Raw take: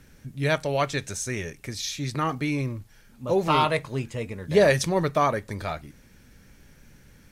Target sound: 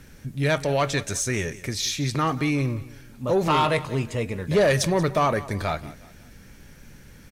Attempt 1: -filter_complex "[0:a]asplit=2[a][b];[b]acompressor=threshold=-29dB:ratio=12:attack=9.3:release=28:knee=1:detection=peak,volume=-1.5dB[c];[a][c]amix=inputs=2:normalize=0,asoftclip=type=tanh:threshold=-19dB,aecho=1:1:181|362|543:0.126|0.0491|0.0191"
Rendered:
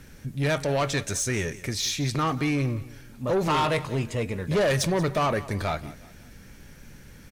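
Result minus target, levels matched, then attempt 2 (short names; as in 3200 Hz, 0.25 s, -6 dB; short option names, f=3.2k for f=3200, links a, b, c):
soft clip: distortion +7 dB
-filter_complex "[0:a]asplit=2[a][b];[b]acompressor=threshold=-29dB:ratio=12:attack=9.3:release=28:knee=1:detection=peak,volume=-1.5dB[c];[a][c]amix=inputs=2:normalize=0,asoftclip=type=tanh:threshold=-12.5dB,aecho=1:1:181|362|543:0.126|0.0491|0.0191"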